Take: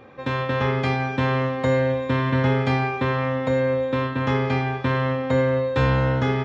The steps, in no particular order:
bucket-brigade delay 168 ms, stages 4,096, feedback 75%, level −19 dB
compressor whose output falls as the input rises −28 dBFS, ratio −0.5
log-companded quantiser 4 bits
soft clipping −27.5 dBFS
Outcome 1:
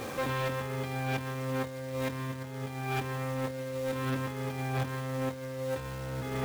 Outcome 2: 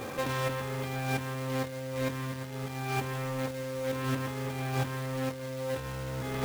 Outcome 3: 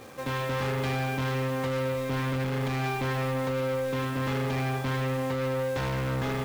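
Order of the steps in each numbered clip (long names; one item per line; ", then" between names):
log-companded quantiser, then bucket-brigade delay, then compressor whose output falls as the input rises, then soft clipping
bucket-brigade delay, then compressor whose output falls as the input rises, then soft clipping, then log-companded quantiser
log-companded quantiser, then soft clipping, then bucket-brigade delay, then compressor whose output falls as the input rises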